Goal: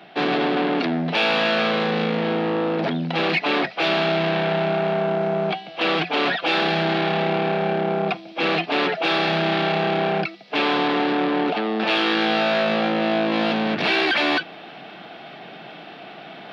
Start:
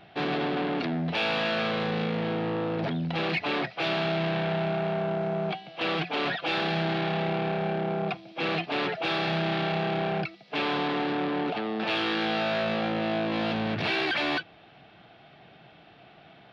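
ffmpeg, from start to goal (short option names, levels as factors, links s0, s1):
-af "highpass=f=180:w=0.5412,highpass=f=180:w=1.3066,areverse,acompressor=mode=upward:threshold=0.0126:ratio=2.5,areverse,volume=2.37"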